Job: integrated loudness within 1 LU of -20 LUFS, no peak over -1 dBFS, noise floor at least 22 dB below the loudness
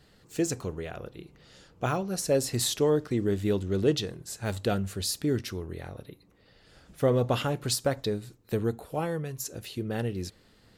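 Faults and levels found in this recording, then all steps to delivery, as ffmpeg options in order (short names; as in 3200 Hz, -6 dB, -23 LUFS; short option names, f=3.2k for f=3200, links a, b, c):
loudness -29.5 LUFS; peak -12.5 dBFS; loudness target -20.0 LUFS
-> -af "volume=9.5dB"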